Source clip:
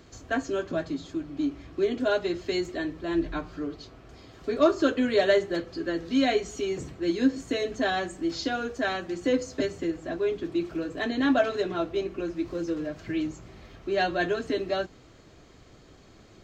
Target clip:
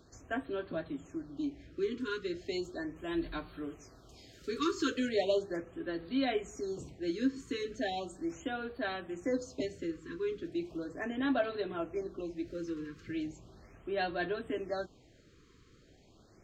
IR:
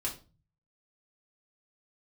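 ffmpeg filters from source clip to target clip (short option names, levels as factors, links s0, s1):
-filter_complex "[0:a]asettb=1/sr,asplit=3[s0][s1][s2];[s0]atrim=end=2.964[s3];[s1]atrim=start=2.96:end=5.09,asetpts=PTS-STARTPTS,afade=t=in:d=0.004:c=qsin,afade=t=out:st=2.126:d=0.004:c=qsin,highshelf=f=3400:g=12[s4];[s2]atrim=start=5.086[s5];[s3][s4]acrossfade=d=0.004:c1=hsin:c2=qsin[s6];[s6][s5]acrossfade=d=0.004:c1=qsin:c2=hsin,afftfilt=real='re*(1-between(b*sr/1024,680*pow(6700/680,0.5+0.5*sin(2*PI*0.37*pts/sr))/1.41,680*pow(6700/680,0.5+0.5*sin(2*PI*0.37*pts/sr))*1.41))':imag='im*(1-between(b*sr/1024,680*pow(6700/680,0.5+0.5*sin(2*PI*0.37*pts/sr))/1.41,680*pow(6700/680,0.5+0.5*sin(2*PI*0.37*pts/sr))*1.41))':win_size=1024:overlap=0.75,volume=0.398"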